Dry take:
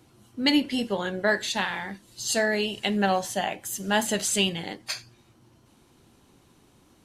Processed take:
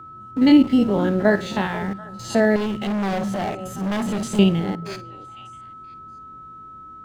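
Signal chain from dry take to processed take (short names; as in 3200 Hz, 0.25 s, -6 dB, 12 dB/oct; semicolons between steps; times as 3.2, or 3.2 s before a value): stepped spectrum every 50 ms; in parallel at -3 dB: bit-crush 6-bit; on the sum: tilt -4 dB/oct; on a send: delay with a stepping band-pass 0.245 s, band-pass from 160 Hz, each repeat 1.4 oct, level -11 dB; on the sum: whine 1300 Hz -38 dBFS; HPF 90 Hz 6 dB/oct; 2.56–4.39 hard clip -21.5 dBFS, distortion -7 dB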